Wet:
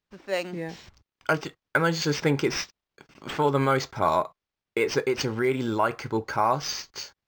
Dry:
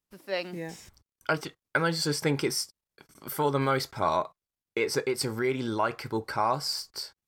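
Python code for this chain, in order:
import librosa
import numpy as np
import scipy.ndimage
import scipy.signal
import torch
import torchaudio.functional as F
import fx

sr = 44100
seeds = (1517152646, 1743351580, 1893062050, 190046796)

y = np.interp(np.arange(len(x)), np.arange(len(x))[::4], x[::4])
y = y * librosa.db_to_amplitude(3.5)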